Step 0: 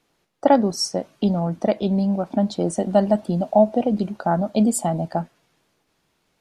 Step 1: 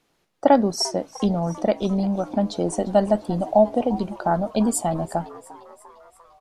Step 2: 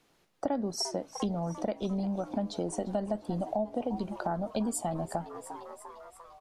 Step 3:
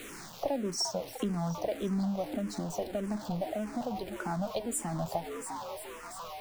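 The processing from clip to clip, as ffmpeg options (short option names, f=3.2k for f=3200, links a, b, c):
-filter_complex "[0:a]asubboost=boost=6:cutoff=67,asplit=6[a][b][c][d][e][f];[b]adelay=348,afreqshift=110,volume=-19dB[g];[c]adelay=696,afreqshift=220,volume=-23.6dB[h];[d]adelay=1044,afreqshift=330,volume=-28.2dB[i];[e]adelay=1392,afreqshift=440,volume=-32.7dB[j];[f]adelay=1740,afreqshift=550,volume=-37.3dB[k];[a][g][h][i][j][k]amix=inputs=6:normalize=0"
-filter_complex "[0:a]acrossover=split=450[a][b];[b]alimiter=limit=-14dB:level=0:latency=1:release=196[c];[a][c]amix=inputs=2:normalize=0,acompressor=threshold=-32dB:ratio=3"
-filter_complex "[0:a]aeval=exprs='val(0)+0.5*0.015*sgn(val(0))':c=same,asplit=2[a][b];[b]afreqshift=-1.7[c];[a][c]amix=inputs=2:normalize=1"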